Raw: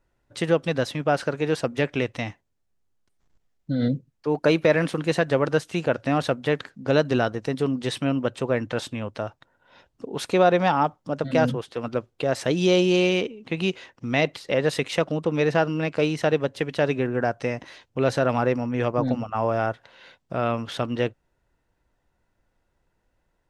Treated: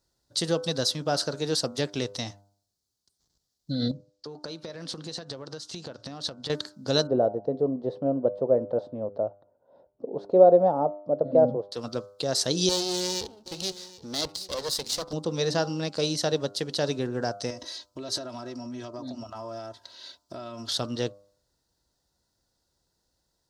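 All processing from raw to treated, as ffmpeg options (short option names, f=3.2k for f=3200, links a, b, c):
-filter_complex "[0:a]asettb=1/sr,asplit=3[a][b][c];[a]atrim=end=3.914[d];[b]atrim=start=3.91:end=6.5,asetpts=PTS-STARTPTS,afade=t=in:d=0.004:c=qsin,afade=t=out:st=2.586:d=0.004:c=qsin,lowpass=6.3k,acompressor=threshold=-30dB:ratio=10:attack=3.2:release=140:knee=1:detection=peak[e];[c]atrim=start=6.496[f];[d][e]acrossfade=d=0.004:c1=hsin:c2=qsin[g];[g][f]acrossfade=d=0.004:c1=qsin:c2=hsin,asettb=1/sr,asplit=3[h][i][j];[h]atrim=end=7.074[k];[i]atrim=start=7.07:end=11.72,asetpts=PTS-STARTPTS,afade=t=in:d=0.004:c=qsin,afade=t=out:st=4.646:d=0.004:c=qsin,lowpass=f=590:t=q:w=3.5,lowshelf=f=120:g=-8.5[l];[j]atrim=start=11.716[m];[k][l]acrossfade=d=0.004:c1=hsin:c2=qsin[n];[n][m]acrossfade=d=0.004:c1=qsin:c2=hsin,asettb=1/sr,asplit=3[o][p][q];[o]atrim=end=12.694[r];[p]atrim=start=12.69:end=15.13,asetpts=PTS-STARTPTS,afade=t=in:d=0.004:c=qsin,afade=t=out:st=2.436:d=0.004:c=qsin,aeval=exprs='max(val(0),0)':c=same,aecho=1:1:769:0.119,atrim=end_sample=107604[s];[q]atrim=start=15.126[t];[r][s]acrossfade=d=0.004:c1=hsin:c2=qsin[u];[u][t]acrossfade=d=0.004:c1=qsin:c2=hsin,asettb=1/sr,asplit=3[v][w][x];[v]atrim=end=17.504[y];[w]atrim=start=17.5:end=20.7,asetpts=PTS-STARTPTS,afade=t=in:d=0.004:c=qsin,afade=t=out:st=3.196:d=0.004:c=qsin,aecho=1:1:3.1:0.85,atrim=end_sample=141120,acompressor=threshold=-30dB:ratio=5:attack=3.2:release=140:knee=1:detection=peak[z];[x]atrim=start=20.696[aa];[y][z]acrossfade=d=0.004:c1=hsin:c2=qsin[ab];[ab][aa]acrossfade=d=0.004:c1=qsin:c2=hsin,highpass=46,highshelf=f=3.3k:t=q:w=3:g=11,bandreject=f=100.2:t=h:w=4,bandreject=f=200.4:t=h:w=4,bandreject=f=300.6:t=h:w=4,bandreject=f=400.8:t=h:w=4,bandreject=f=501:t=h:w=4,bandreject=f=601.2:t=h:w=4,bandreject=f=701.4:t=h:w=4,bandreject=f=801.6:t=h:w=4,bandreject=f=901.8:t=h:w=4,bandreject=f=1.002k:t=h:w=4,bandreject=f=1.1022k:t=h:w=4,bandreject=f=1.2024k:t=h:w=4,bandreject=f=1.3026k:t=h:w=4,bandreject=f=1.4028k:t=h:w=4,bandreject=f=1.503k:t=h:w=4,volume=-4.5dB"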